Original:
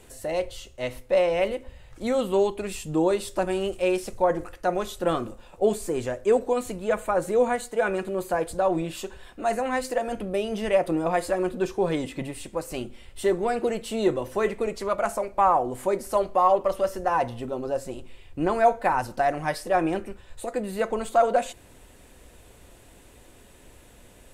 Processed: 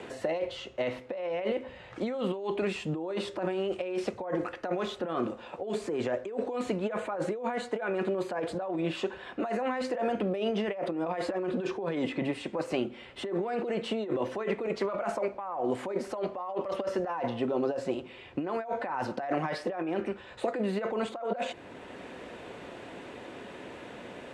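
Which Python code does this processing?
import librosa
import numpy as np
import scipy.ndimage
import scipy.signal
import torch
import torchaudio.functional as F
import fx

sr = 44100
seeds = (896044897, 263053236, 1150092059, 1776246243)

y = fx.over_compress(x, sr, threshold_db=-31.0, ratio=-1.0)
y = fx.bandpass_edges(y, sr, low_hz=190.0, high_hz=3100.0)
y = fx.band_squash(y, sr, depth_pct=40)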